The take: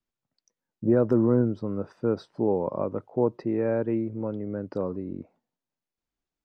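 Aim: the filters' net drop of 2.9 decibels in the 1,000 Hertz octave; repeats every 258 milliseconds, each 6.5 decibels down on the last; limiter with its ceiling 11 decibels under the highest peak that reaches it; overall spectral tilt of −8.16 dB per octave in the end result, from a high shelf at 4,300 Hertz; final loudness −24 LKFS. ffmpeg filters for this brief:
ffmpeg -i in.wav -af "equalizer=frequency=1000:width_type=o:gain=-4,highshelf=frequency=4300:gain=4,alimiter=limit=-21.5dB:level=0:latency=1,aecho=1:1:258|516|774|1032|1290|1548:0.473|0.222|0.105|0.0491|0.0231|0.0109,volume=8.5dB" out.wav

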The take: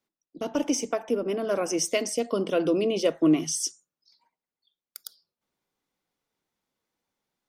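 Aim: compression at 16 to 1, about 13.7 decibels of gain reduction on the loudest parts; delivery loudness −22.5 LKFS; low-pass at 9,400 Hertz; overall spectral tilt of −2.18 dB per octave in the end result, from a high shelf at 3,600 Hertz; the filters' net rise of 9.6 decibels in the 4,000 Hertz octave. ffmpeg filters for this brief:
ffmpeg -i in.wav -af "lowpass=9400,highshelf=frequency=3600:gain=8.5,equalizer=frequency=4000:width_type=o:gain=8,acompressor=threshold=-29dB:ratio=16,volume=11dB" out.wav

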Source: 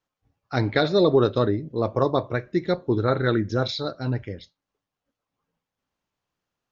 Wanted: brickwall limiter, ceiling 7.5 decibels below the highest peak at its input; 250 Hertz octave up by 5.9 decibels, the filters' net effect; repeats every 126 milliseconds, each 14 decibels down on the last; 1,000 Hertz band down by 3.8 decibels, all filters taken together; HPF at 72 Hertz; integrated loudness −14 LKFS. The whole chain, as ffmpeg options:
ffmpeg -i in.wav -af "highpass=72,equalizer=frequency=250:width_type=o:gain=8.5,equalizer=frequency=1000:width_type=o:gain=-6,alimiter=limit=-12dB:level=0:latency=1,aecho=1:1:126|252:0.2|0.0399,volume=9.5dB" out.wav

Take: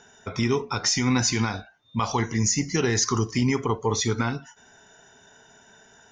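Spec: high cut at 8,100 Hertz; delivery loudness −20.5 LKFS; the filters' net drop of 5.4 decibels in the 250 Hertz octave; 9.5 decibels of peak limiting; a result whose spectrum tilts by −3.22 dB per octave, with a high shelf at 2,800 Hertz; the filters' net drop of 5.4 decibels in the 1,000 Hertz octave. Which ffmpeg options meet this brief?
ffmpeg -i in.wav -af "lowpass=8100,equalizer=frequency=250:width_type=o:gain=-6,equalizer=frequency=1000:width_type=o:gain=-7.5,highshelf=frequency=2800:gain=7.5,volume=6dB,alimiter=limit=-9.5dB:level=0:latency=1" out.wav

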